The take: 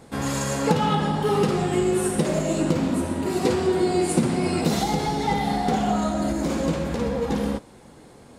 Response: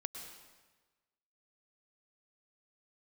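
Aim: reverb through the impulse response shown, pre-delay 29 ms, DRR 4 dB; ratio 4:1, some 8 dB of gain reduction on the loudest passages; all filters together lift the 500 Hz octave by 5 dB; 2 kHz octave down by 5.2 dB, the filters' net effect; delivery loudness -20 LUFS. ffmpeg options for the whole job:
-filter_complex "[0:a]equalizer=f=500:t=o:g=7,equalizer=f=2000:t=o:g=-7,acompressor=threshold=0.0708:ratio=4,asplit=2[s0][s1];[1:a]atrim=start_sample=2205,adelay=29[s2];[s1][s2]afir=irnorm=-1:irlink=0,volume=0.75[s3];[s0][s3]amix=inputs=2:normalize=0,volume=1.78"

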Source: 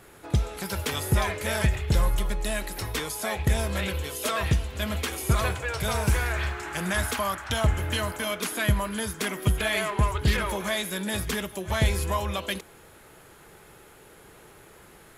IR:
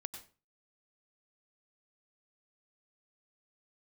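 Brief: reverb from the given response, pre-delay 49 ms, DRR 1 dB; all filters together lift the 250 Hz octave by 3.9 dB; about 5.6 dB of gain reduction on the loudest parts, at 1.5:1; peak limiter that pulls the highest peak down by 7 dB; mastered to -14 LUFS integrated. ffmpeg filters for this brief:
-filter_complex "[0:a]equalizer=f=250:t=o:g=5.5,acompressor=threshold=0.0251:ratio=1.5,alimiter=limit=0.0891:level=0:latency=1,asplit=2[s0][s1];[1:a]atrim=start_sample=2205,adelay=49[s2];[s1][s2]afir=irnorm=-1:irlink=0,volume=1.19[s3];[s0][s3]amix=inputs=2:normalize=0,volume=5.96"

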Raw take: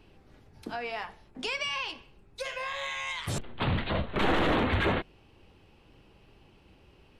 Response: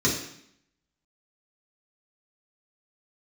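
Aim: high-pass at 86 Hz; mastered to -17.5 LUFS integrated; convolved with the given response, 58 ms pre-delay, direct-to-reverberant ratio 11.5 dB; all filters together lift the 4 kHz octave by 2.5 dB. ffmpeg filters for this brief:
-filter_complex "[0:a]highpass=86,equalizer=f=4000:t=o:g=3.5,asplit=2[s0][s1];[1:a]atrim=start_sample=2205,adelay=58[s2];[s1][s2]afir=irnorm=-1:irlink=0,volume=0.0596[s3];[s0][s3]amix=inputs=2:normalize=0,volume=4.22"

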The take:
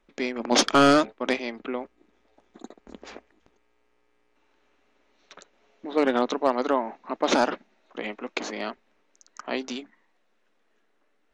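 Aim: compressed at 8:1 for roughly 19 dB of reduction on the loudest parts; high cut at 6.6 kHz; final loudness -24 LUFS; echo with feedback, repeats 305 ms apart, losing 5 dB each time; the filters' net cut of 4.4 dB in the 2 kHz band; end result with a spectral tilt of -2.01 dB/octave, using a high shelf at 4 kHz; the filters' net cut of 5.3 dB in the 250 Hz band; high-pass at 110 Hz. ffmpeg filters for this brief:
-af "highpass=110,lowpass=6600,equalizer=f=250:t=o:g=-6,equalizer=f=2000:t=o:g=-4,highshelf=f=4000:g=-8.5,acompressor=threshold=0.0141:ratio=8,aecho=1:1:305|610|915|1220|1525|1830|2135:0.562|0.315|0.176|0.0988|0.0553|0.031|0.0173,volume=8.41"

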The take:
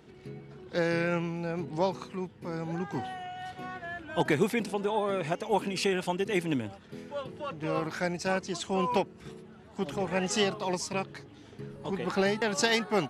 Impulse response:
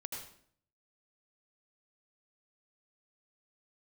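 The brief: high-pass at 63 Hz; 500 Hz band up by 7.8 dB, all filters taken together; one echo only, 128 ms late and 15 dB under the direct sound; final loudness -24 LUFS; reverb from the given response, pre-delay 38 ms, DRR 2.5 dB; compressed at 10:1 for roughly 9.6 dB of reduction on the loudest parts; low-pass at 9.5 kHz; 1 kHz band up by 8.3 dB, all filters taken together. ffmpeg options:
-filter_complex "[0:a]highpass=63,lowpass=9500,equalizer=f=500:t=o:g=8,equalizer=f=1000:t=o:g=7.5,acompressor=threshold=0.0631:ratio=10,aecho=1:1:128:0.178,asplit=2[s0][s1];[1:a]atrim=start_sample=2205,adelay=38[s2];[s1][s2]afir=irnorm=-1:irlink=0,volume=0.841[s3];[s0][s3]amix=inputs=2:normalize=0,volume=1.68"

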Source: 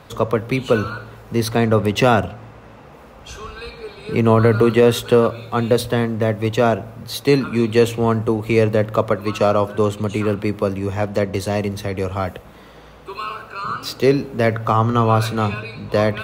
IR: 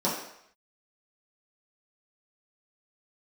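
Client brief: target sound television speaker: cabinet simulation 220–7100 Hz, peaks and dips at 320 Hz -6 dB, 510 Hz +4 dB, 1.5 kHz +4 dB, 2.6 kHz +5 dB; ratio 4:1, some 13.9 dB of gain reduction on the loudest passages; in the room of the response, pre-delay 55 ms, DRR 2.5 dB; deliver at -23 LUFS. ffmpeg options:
-filter_complex "[0:a]acompressor=threshold=0.0501:ratio=4,asplit=2[s0][s1];[1:a]atrim=start_sample=2205,adelay=55[s2];[s1][s2]afir=irnorm=-1:irlink=0,volume=0.2[s3];[s0][s3]amix=inputs=2:normalize=0,highpass=f=220:w=0.5412,highpass=f=220:w=1.3066,equalizer=f=320:t=q:w=4:g=-6,equalizer=f=510:t=q:w=4:g=4,equalizer=f=1500:t=q:w=4:g=4,equalizer=f=2600:t=q:w=4:g=5,lowpass=f=7100:w=0.5412,lowpass=f=7100:w=1.3066,volume=1.5"

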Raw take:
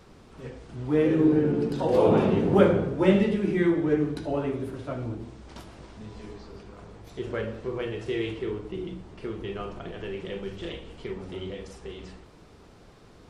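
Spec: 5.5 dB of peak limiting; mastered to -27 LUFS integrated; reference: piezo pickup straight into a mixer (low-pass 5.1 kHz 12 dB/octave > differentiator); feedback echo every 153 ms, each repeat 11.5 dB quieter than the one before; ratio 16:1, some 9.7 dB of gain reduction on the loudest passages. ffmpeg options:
-af "acompressor=threshold=0.0708:ratio=16,alimiter=limit=0.0891:level=0:latency=1,lowpass=5100,aderivative,aecho=1:1:153|306|459:0.266|0.0718|0.0194,volume=22.4"

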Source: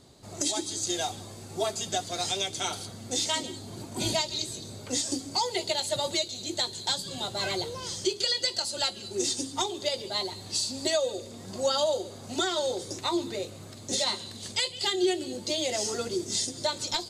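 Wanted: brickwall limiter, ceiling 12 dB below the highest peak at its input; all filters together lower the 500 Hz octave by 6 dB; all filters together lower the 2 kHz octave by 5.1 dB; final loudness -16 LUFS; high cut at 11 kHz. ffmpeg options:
-af "lowpass=11000,equalizer=f=500:t=o:g=-8,equalizer=f=2000:t=o:g=-6,volume=11.2,alimiter=limit=0.447:level=0:latency=1"

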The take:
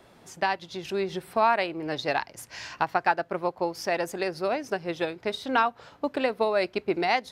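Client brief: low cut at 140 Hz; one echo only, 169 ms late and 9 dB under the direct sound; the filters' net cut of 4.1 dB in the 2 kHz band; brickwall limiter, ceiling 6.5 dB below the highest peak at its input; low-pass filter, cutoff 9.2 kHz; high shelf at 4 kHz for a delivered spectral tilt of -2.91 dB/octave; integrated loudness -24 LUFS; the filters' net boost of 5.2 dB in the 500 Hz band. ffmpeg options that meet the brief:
-af "highpass=140,lowpass=9200,equalizer=f=500:t=o:g=7,equalizer=f=2000:t=o:g=-7,highshelf=f=4000:g=5,alimiter=limit=0.178:level=0:latency=1,aecho=1:1:169:0.355,volume=1.33"

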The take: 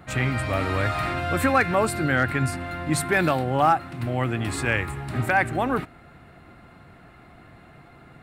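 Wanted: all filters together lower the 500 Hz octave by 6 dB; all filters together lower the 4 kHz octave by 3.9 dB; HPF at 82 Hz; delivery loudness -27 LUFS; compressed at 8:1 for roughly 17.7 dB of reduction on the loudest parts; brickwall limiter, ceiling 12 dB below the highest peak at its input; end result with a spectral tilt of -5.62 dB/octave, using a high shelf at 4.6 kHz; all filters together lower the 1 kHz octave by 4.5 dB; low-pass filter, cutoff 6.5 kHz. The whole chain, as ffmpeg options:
-af "highpass=82,lowpass=6500,equalizer=f=500:t=o:g=-6.5,equalizer=f=1000:t=o:g=-4,equalizer=f=4000:t=o:g=-6.5,highshelf=f=4600:g=4.5,acompressor=threshold=0.0126:ratio=8,volume=10.6,alimiter=limit=0.133:level=0:latency=1"

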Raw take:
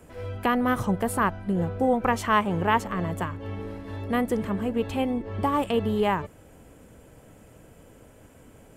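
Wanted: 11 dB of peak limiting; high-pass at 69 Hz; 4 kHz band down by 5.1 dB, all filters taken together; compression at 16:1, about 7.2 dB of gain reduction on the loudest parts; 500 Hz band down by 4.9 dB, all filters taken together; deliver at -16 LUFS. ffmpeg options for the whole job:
-af "highpass=69,equalizer=f=500:t=o:g=-5.5,equalizer=f=4000:t=o:g=-8,acompressor=threshold=0.0501:ratio=16,volume=9.44,alimiter=limit=0.501:level=0:latency=1"

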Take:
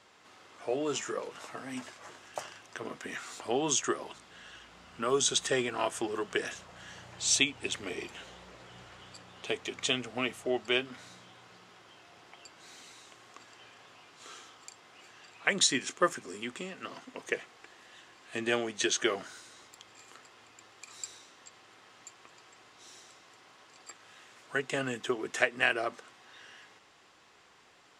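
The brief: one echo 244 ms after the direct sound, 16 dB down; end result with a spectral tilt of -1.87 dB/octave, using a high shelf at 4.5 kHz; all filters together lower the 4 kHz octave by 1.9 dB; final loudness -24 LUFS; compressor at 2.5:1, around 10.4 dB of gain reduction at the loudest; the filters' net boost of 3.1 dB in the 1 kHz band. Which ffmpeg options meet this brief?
-af "equalizer=f=1000:t=o:g=4,equalizer=f=4000:t=o:g=-6.5,highshelf=f=4500:g=7,acompressor=threshold=0.0158:ratio=2.5,aecho=1:1:244:0.158,volume=6.31"

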